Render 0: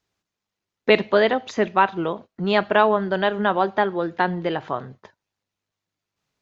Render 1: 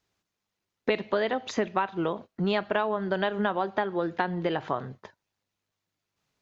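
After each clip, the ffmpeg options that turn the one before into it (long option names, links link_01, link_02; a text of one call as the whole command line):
ffmpeg -i in.wav -af "acompressor=threshold=-23dB:ratio=6" out.wav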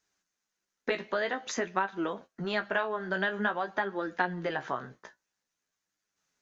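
ffmpeg -i in.wav -af "equalizer=frequency=100:width_type=o:width=0.67:gain=-12,equalizer=frequency=1600:width_type=o:width=0.67:gain=8,equalizer=frequency=6300:width_type=o:width=0.67:gain=11,flanger=delay=9:depth=8.6:regen=34:speed=0.5:shape=triangular,volume=-1.5dB" out.wav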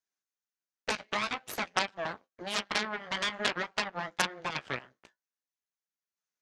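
ffmpeg -i in.wav -af "aeval=exprs='0.282*(cos(1*acos(clip(val(0)/0.282,-1,1)))-cos(1*PI/2))+0.112*(cos(3*acos(clip(val(0)/0.282,-1,1)))-cos(3*PI/2))+0.0178*(cos(5*acos(clip(val(0)/0.282,-1,1)))-cos(5*PI/2))+0.0794*(cos(6*acos(clip(val(0)/0.282,-1,1)))-cos(6*PI/2))+0.1*(cos(8*acos(clip(val(0)/0.282,-1,1)))-cos(8*PI/2))':channel_layout=same,highpass=frequency=290:poles=1,volume=3.5dB" out.wav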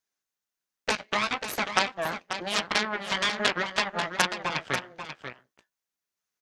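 ffmpeg -i in.wav -af "aecho=1:1:539:0.355,volume=5dB" out.wav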